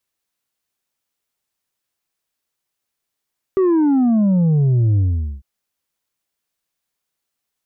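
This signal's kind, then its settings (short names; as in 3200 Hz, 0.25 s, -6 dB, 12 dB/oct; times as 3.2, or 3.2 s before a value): sub drop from 390 Hz, over 1.85 s, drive 4 dB, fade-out 0.44 s, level -12.5 dB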